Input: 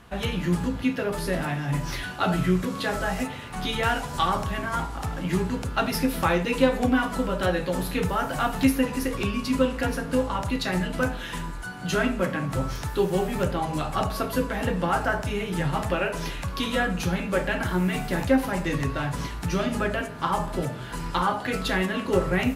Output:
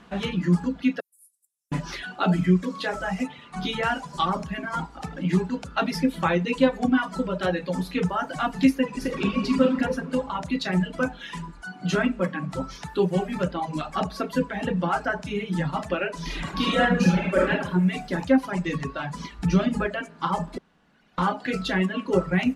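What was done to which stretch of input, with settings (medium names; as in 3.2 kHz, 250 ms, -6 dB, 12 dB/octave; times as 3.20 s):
1.00–1.72 s: inverse Chebyshev high-pass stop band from 2 kHz, stop band 80 dB
8.87–9.64 s: reverb throw, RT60 2.6 s, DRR 0 dB
16.23–17.51 s: reverb throw, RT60 1.1 s, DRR -4.5 dB
19.39–19.87 s: bass shelf 140 Hz +10.5 dB
20.58–21.18 s: room tone
whole clip: reverb removal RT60 1.8 s; low-pass 6.7 kHz 12 dB/octave; resonant low shelf 140 Hz -7 dB, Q 3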